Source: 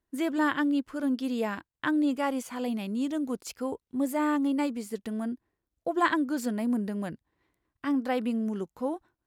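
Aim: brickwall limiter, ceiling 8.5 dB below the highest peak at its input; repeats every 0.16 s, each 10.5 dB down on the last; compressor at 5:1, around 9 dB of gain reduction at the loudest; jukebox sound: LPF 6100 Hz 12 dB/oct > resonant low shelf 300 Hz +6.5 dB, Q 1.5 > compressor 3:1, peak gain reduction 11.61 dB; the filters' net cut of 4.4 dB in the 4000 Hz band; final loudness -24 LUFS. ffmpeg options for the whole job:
-af "equalizer=f=4k:t=o:g=-5.5,acompressor=threshold=-30dB:ratio=5,alimiter=level_in=3.5dB:limit=-24dB:level=0:latency=1,volume=-3.5dB,lowpass=6.1k,lowshelf=f=300:t=q:w=1.5:g=6.5,aecho=1:1:160|320|480:0.299|0.0896|0.0269,acompressor=threshold=-38dB:ratio=3,volume=15dB"

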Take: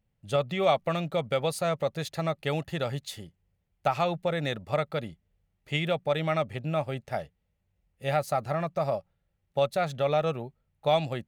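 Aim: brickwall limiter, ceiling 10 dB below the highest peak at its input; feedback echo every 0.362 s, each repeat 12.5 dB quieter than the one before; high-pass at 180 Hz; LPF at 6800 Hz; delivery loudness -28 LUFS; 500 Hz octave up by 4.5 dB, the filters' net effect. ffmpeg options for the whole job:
-af "highpass=180,lowpass=6.8k,equalizer=f=500:t=o:g=5.5,alimiter=limit=-18dB:level=0:latency=1,aecho=1:1:362|724|1086:0.237|0.0569|0.0137,volume=1.5dB"

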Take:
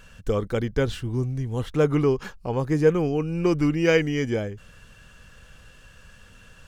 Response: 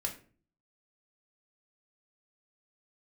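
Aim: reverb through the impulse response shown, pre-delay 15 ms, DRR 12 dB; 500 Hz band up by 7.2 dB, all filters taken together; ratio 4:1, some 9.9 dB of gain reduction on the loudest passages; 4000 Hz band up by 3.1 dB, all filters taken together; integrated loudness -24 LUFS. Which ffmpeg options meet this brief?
-filter_complex "[0:a]equalizer=f=500:t=o:g=8,equalizer=f=4k:t=o:g=4.5,acompressor=threshold=-19dB:ratio=4,asplit=2[a][b];[1:a]atrim=start_sample=2205,adelay=15[c];[b][c]afir=irnorm=-1:irlink=0,volume=-14dB[d];[a][d]amix=inputs=2:normalize=0,volume=0.5dB"

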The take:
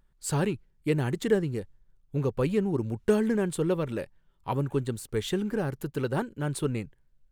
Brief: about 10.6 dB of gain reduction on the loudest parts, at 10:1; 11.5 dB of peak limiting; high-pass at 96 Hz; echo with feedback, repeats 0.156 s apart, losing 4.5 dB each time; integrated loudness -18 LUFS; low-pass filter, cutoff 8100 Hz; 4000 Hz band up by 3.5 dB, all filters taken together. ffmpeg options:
-af "highpass=96,lowpass=8.1k,equalizer=f=4k:t=o:g=4.5,acompressor=threshold=-28dB:ratio=10,alimiter=level_in=5.5dB:limit=-24dB:level=0:latency=1,volume=-5.5dB,aecho=1:1:156|312|468|624|780|936|1092|1248|1404:0.596|0.357|0.214|0.129|0.0772|0.0463|0.0278|0.0167|0.01,volume=19.5dB"

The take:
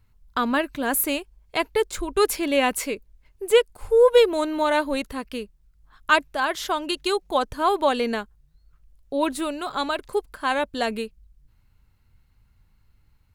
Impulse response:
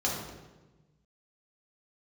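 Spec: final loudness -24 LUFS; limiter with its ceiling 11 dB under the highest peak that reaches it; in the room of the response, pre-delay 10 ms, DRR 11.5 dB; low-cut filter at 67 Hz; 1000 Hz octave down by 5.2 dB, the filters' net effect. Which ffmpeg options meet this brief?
-filter_complex "[0:a]highpass=67,equalizer=f=1k:t=o:g=-6.5,alimiter=limit=-17dB:level=0:latency=1,asplit=2[a][b];[1:a]atrim=start_sample=2205,adelay=10[c];[b][c]afir=irnorm=-1:irlink=0,volume=-20.5dB[d];[a][d]amix=inputs=2:normalize=0,volume=4dB"

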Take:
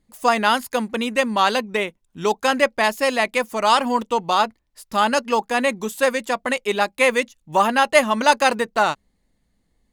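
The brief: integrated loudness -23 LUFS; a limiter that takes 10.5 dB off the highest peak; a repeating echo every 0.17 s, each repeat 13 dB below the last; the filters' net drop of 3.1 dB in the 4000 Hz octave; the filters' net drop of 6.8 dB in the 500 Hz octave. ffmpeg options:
-af "equalizer=f=500:t=o:g=-8,equalizer=f=4k:t=o:g=-4,alimiter=limit=-15.5dB:level=0:latency=1,aecho=1:1:170|340|510:0.224|0.0493|0.0108,volume=3.5dB"

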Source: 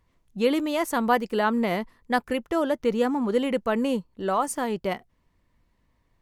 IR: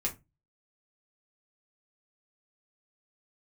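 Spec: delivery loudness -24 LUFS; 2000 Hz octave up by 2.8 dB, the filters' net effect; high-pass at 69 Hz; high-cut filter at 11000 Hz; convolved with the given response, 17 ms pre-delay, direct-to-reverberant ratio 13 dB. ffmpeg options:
-filter_complex "[0:a]highpass=69,lowpass=11k,equalizer=f=2k:t=o:g=3.5,asplit=2[a][b];[1:a]atrim=start_sample=2205,adelay=17[c];[b][c]afir=irnorm=-1:irlink=0,volume=-17dB[d];[a][d]amix=inputs=2:normalize=0,volume=1dB"

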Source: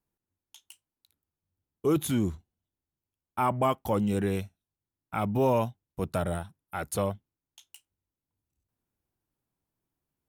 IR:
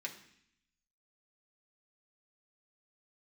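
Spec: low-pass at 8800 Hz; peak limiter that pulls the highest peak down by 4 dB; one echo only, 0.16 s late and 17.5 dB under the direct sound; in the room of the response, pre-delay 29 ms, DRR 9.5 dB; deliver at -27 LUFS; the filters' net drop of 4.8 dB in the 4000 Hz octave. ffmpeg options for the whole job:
-filter_complex "[0:a]lowpass=8.8k,equalizer=f=4k:t=o:g=-6.5,alimiter=limit=-18.5dB:level=0:latency=1,aecho=1:1:160:0.133,asplit=2[a][b];[1:a]atrim=start_sample=2205,adelay=29[c];[b][c]afir=irnorm=-1:irlink=0,volume=-9dB[d];[a][d]amix=inputs=2:normalize=0,volume=4.5dB"

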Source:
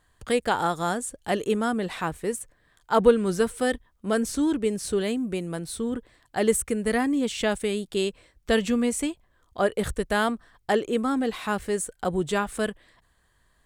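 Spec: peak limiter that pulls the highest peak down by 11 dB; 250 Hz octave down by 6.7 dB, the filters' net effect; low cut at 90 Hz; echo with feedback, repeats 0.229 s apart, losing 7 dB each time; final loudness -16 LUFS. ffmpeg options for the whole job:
-af "highpass=90,equalizer=f=250:t=o:g=-8,alimiter=limit=-19.5dB:level=0:latency=1,aecho=1:1:229|458|687|916|1145:0.447|0.201|0.0905|0.0407|0.0183,volume=14.5dB"

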